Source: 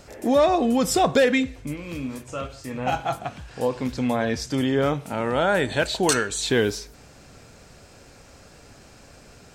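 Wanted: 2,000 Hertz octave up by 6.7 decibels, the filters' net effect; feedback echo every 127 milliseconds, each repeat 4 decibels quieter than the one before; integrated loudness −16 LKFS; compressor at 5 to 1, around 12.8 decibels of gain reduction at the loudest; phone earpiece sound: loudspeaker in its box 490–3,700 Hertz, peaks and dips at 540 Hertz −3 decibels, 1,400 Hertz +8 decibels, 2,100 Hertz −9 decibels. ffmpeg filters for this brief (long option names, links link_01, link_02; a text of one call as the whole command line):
ffmpeg -i in.wav -af "equalizer=frequency=2000:width_type=o:gain=7.5,acompressor=threshold=-28dB:ratio=5,highpass=490,equalizer=frequency=540:width_type=q:width=4:gain=-3,equalizer=frequency=1400:width_type=q:width=4:gain=8,equalizer=frequency=2100:width_type=q:width=4:gain=-9,lowpass=frequency=3700:width=0.5412,lowpass=frequency=3700:width=1.3066,aecho=1:1:127|254|381|508|635|762|889|1016|1143:0.631|0.398|0.25|0.158|0.0994|0.0626|0.0394|0.0249|0.0157,volume=15.5dB" out.wav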